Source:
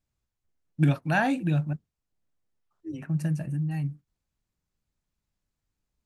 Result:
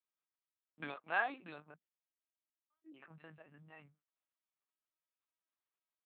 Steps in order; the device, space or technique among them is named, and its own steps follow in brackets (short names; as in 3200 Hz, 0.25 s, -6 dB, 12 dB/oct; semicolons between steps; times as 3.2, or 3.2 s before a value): talking toy (LPC vocoder at 8 kHz pitch kept; HPF 640 Hz 12 dB/oct; bell 1200 Hz +5 dB 0.31 oct); 1.75–2.91 bell 1100 Hz -9.5 dB 0.38 oct; gain -8 dB